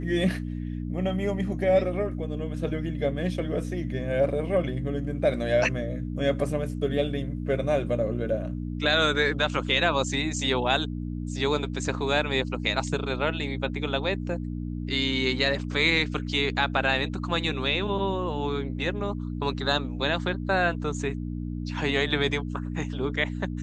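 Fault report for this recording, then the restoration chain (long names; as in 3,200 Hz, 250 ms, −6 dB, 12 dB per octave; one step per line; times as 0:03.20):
mains hum 60 Hz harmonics 5 −32 dBFS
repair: hum removal 60 Hz, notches 5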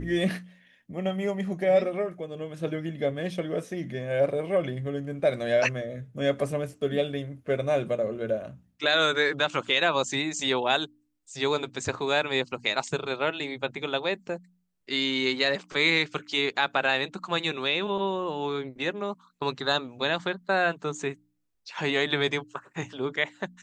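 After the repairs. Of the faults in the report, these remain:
none of them is left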